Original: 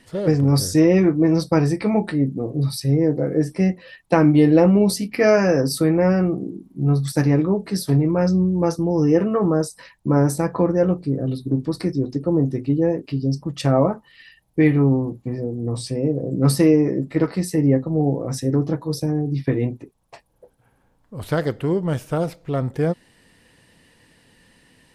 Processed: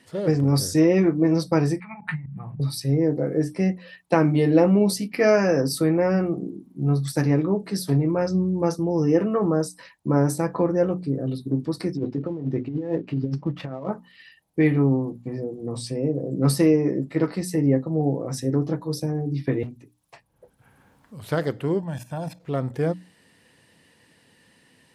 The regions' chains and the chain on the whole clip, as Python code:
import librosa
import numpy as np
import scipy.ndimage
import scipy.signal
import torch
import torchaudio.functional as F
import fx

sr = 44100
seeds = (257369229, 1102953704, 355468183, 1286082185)

y = fx.chain(x, sr, fx.over_compress(threshold_db=-22.0, ratio=-0.5),
    fx.curve_eq(hz=(110.0, 170.0, 260.0, 470.0, 870.0, 1600.0, 2400.0, 5600.0, 9700.0), db=(0, 5, -24, -28, 2, 5, 6, -23, -10)),
    fx.auto_swell(attack_ms=108.0), at=(1.8, 2.6))
y = fx.chain(y, sr, fx.dead_time(dead_ms=0.067),
    fx.lowpass(hz=2500.0, slope=12),
    fx.over_compress(threshold_db=-22.0, ratio=-0.5), at=(11.97, 13.9))
y = fx.chain(y, sr, fx.peak_eq(hz=520.0, db=-10.0, octaves=2.7),
    fx.overload_stage(gain_db=25.0),
    fx.band_squash(depth_pct=70), at=(19.63, 21.24))
y = fx.chain(y, sr, fx.comb(ms=1.2, depth=0.87),
    fx.level_steps(step_db=13), at=(21.79, 22.4))
y = scipy.signal.sosfilt(scipy.signal.butter(2, 93.0, 'highpass', fs=sr, output='sos'), y)
y = fx.hum_notches(y, sr, base_hz=60, count=5)
y = y * 10.0 ** (-2.5 / 20.0)